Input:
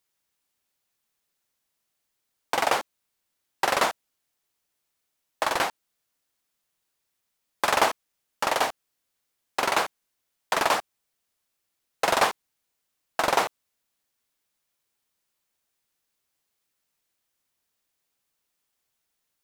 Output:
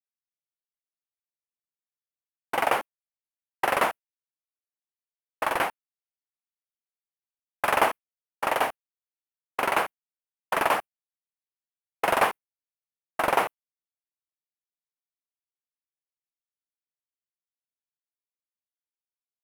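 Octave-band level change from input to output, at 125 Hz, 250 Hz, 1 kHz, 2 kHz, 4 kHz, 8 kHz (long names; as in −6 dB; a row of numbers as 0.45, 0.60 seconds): 0.0, 0.0, 0.0, −0.5, −6.0, −6.5 decibels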